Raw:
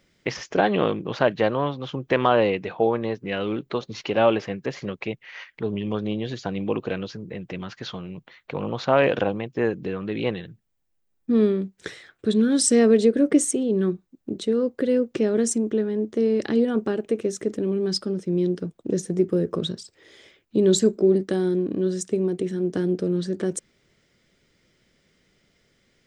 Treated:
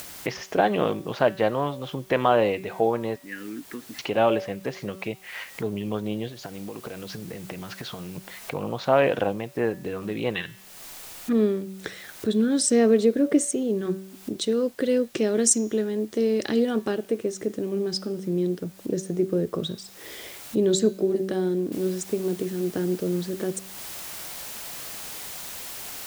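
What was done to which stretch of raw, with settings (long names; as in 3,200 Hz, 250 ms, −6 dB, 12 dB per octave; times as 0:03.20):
0:03.16–0:03.99: pair of resonant band-passes 690 Hz, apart 2.7 octaves
0:06.28–0:08.16: downward compressor 10 to 1, threshold −35 dBFS
0:10.35–0:11.33: flat-topped bell 1,800 Hz +15 dB 2.3 octaves
0:13.85–0:16.96: high-shelf EQ 2,600 Hz +11.5 dB
0:21.72: noise floor change −53 dB −42 dB
whole clip: parametric band 700 Hz +3.5 dB 0.67 octaves; hum removal 190.8 Hz, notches 36; upward compression, threshold −25 dBFS; level −2.5 dB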